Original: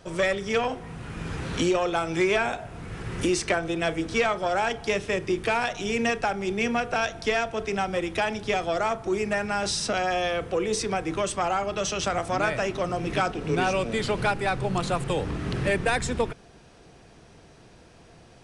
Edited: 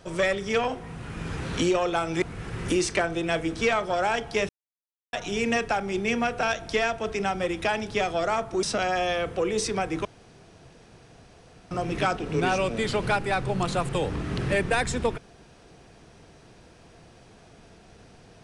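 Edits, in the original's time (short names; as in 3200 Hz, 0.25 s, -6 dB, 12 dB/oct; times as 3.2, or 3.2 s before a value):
2.22–2.75 cut
5.02–5.66 mute
9.16–9.78 cut
11.2–12.86 room tone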